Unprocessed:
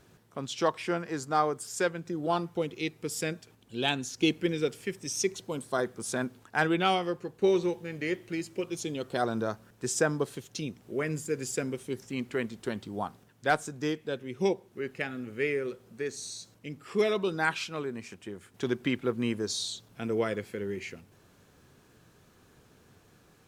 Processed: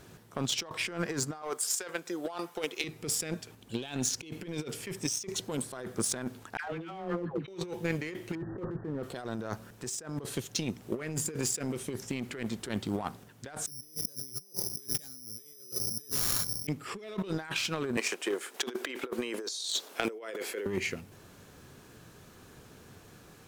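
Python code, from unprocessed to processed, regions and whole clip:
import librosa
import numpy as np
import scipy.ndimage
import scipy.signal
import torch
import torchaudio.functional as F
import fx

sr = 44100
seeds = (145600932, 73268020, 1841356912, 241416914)

y = fx.chain(x, sr, fx.highpass(hz=520.0, slope=12),
    fx.high_shelf(hz=8400.0, db=5.0), at=(1.42, 2.84))
y = fx.chain(y, sr, fx.air_absorb(metres=470.0),
    fx.dispersion(late='lows', ms=150.0, hz=650.0), at=(6.57, 7.48))
y = fx.chain(y, sr, fx.zero_step(step_db=-46.0),
    fx.brickwall_lowpass(high_hz=1900.0),
    fx.low_shelf(hz=91.0, db=11.0), at=(8.35, 9.03))
y = fx.chain(y, sr, fx.median_filter(points=15),
    fx.low_shelf(hz=210.0, db=11.5),
    fx.resample_bad(factor=8, down='none', up='zero_stuff'), at=(13.66, 16.67))
y = fx.chain(y, sr, fx.highpass(hz=360.0, slope=24),
    fx.over_compress(threshold_db=-43.0, ratio=-1.0), at=(17.97, 20.66))
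y = fx.high_shelf(y, sr, hz=6800.0, db=2.5)
y = fx.leveller(y, sr, passes=1)
y = fx.over_compress(y, sr, threshold_db=-37.0, ratio=-1.0)
y = y * librosa.db_to_amplitude(-1.5)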